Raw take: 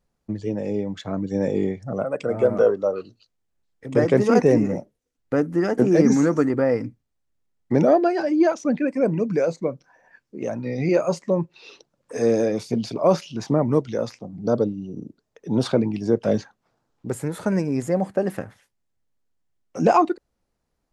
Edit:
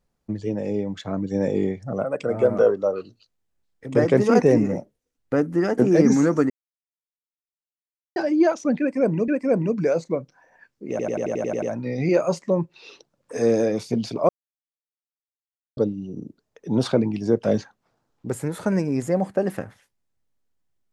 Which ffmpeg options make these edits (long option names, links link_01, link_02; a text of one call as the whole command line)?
ffmpeg -i in.wav -filter_complex "[0:a]asplit=14[link_01][link_02][link_03][link_04][link_05][link_06][link_07][link_08][link_09][link_10][link_11][link_12][link_13][link_14];[link_01]atrim=end=6.5,asetpts=PTS-STARTPTS,afade=type=out:start_time=6.496:duration=0.004:curve=hsin[link_15];[link_02]atrim=start=6.5:end=8.16,asetpts=PTS-STARTPTS,volume=0[link_16];[link_03]atrim=start=8.16:end=9.282,asetpts=PTS-STARTPTS,afade=type=in:duration=0.004:curve=hsin[link_17];[link_04]atrim=start=8.798:end=10.512[link_18];[link_05]atrim=start=10.418:end=10.512[link_19];[link_06]atrim=start=10.418:end=10.512[link_20];[link_07]atrim=start=10.418:end=10.512[link_21];[link_08]atrim=start=10.418:end=10.512[link_22];[link_09]atrim=start=10.418:end=10.512[link_23];[link_10]atrim=start=10.418:end=10.512[link_24];[link_11]atrim=start=10.418:end=10.512[link_25];[link_12]atrim=start=10.418:end=13.09,asetpts=PTS-STARTPTS,afade=type=out:start_time=2.668:duration=0.004:curve=hsin[link_26];[link_13]atrim=start=13.09:end=14.57,asetpts=PTS-STARTPTS,volume=0[link_27];[link_14]atrim=start=14.57,asetpts=PTS-STARTPTS,afade=type=in:duration=0.004:curve=hsin[link_28];[link_15][link_16][link_17]concat=n=3:v=0:a=1[link_29];[link_29][link_18]acrossfade=duration=0.004:curve1=hsin:curve2=hsin[link_30];[link_30][link_19]acrossfade=duration=0.004:curve1=hsin:curve2=hsin[link_31];[link_31][link_20]acrossfade=duration=0.004:curve1=hsin:curve2=hsin[link_32];[link_32][link_21]acrossfade=duration=0.004:curve1=hsin:curve2=hsin[link_33];[link_33][link_22]acrossfade=duration=0.004:curve1=hsin:curve2=hsin[link_34];[link_34][link_23]acrossfade=duration=0.004:curve1=hsin:curve2=hsin[link_35];[link_35][link_24]acrossfade=duration=0.004:curve1=hsin:curve2=hsin[link_36];[link_36][link_25]acrossfade=duration=0.004:curve1=hsin:curve2=hsin[link_37];[link_26][link_27][link_28]concat=n=3:v=0:a=1[link_38];[link_37][link_38]acrossfade=duration=0.004:curve1=hsin:curve2=hsin" out.wav